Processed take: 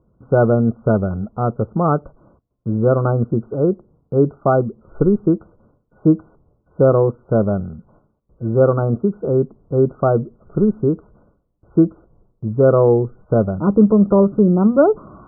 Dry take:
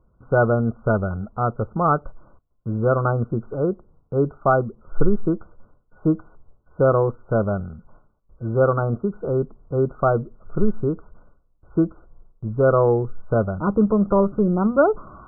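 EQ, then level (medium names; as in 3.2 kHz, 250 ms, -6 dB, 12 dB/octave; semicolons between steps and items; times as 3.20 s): band-pass filter 250 Hz, Q 0.54; +6.5 dB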